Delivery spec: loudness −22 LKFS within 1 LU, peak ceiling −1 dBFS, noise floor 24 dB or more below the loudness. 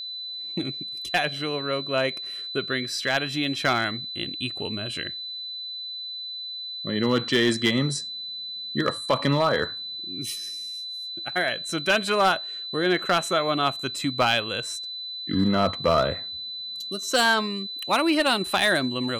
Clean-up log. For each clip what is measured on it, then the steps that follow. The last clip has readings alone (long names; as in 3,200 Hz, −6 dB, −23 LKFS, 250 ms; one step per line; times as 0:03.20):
share of clipped samples 0.3%; peaks flattened at −13.5 dBFS; interfering tone 4,000 Hz; level of the tone −32 dBFS; integrated loudness −25.5 LKFS; sample peak −13.5 dBFS; target loudness −22.0 LKFS
→ clipped peaks rebuilt −13.5 dBFS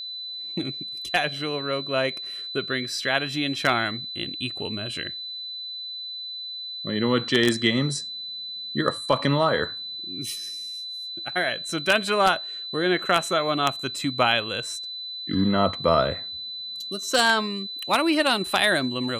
share of clipped samples 0.0%; interfering tone 4,000 Hz; level of the tone −32 dBFS
→ notch filter 4,000 Hz, Q 30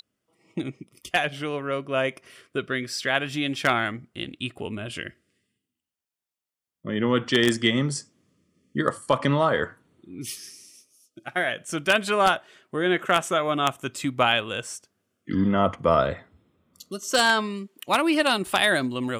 interfering tone none found; integrated loudness −24.5 LKFS; sample peak −4.0 dBFS; target loudness −22.0 LKFS
→ level +2.5 dB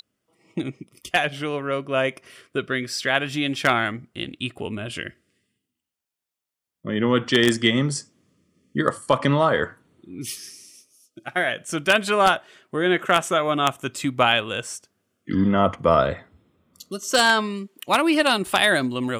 integrated loudness −22.0 LKFS; sample peak −1.5 dBFS; background noise floor −86 dBFS